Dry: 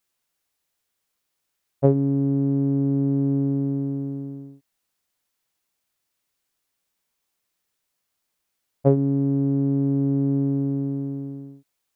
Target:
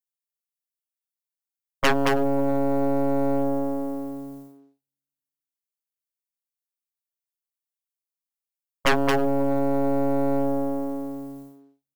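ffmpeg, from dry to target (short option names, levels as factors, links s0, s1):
-filter_complex "[0:a]equalizer=f=86:t=o:w=1.9:g=-13.5,asplit=2[s0][s1];[s1]aecho=0:1:326|652|978:0.0891|0.0392|0.0173[s2];[s0][s2]amix=inputs=2:normalize=0,adynamicequalizer=threshold=0.0112:dfrequency=540:dqfactor=0.94:tfrequency=540:tqfactor=0.94:attack=5:release=100:ratio=0.375:range=3:mode=boostabove:tftype=bell,agate=range=0.0224:threshold=0.0126:ratio=3:detection=peak,aeval=exprs='0.631*(cos(1*acos(clip(val(0)/0.631,-1,1)))-cos(1*PI/2))+0.282*(cos(6*acos(clip(val(0)/0.631,-1,1)))-cos(6*PI/2))':c=same,asplit=2[s3][s4];[s4]adelay=220,highpass=300,lowpass=3400,asoftclip=type=hard:threshold=0.335,volume=0.398[s5];[s3][s5]amix=inputs=2:normalize=0,crystalizer=i=5.5:c=0,asoftclip=type=hard:threshold=0.188"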